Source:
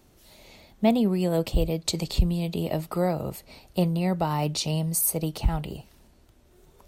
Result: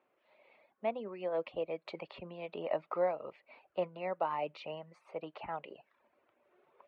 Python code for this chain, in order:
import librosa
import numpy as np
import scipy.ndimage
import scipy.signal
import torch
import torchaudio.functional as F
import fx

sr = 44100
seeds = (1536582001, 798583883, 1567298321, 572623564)

y = fx.dereverb_blind(x, sr, rt60_s=0.59)
y = fx.rider(y, sr, range_db=10, speed_s=0.5)
y = fx.cabinet(y, sr, low_hz=490.0, low_slope=12, high_hz=2500.0, hz=(560.0, 1100.0, 2400.0), db=(6, 5, 4))
y = F.gain(torch.from_numpy(y), -7.0).numpy()